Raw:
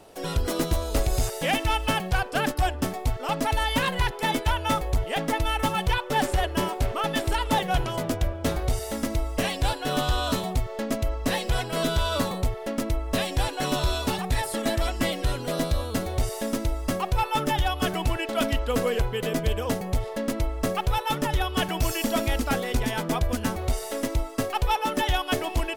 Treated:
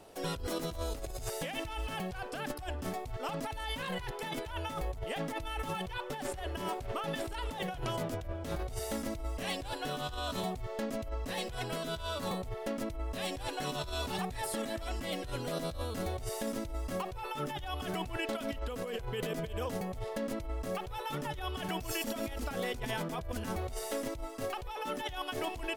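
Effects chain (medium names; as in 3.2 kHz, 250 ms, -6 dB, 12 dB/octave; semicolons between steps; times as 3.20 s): compressor with a negative ratio -29 dBFS, ratio -1; trim -8 dB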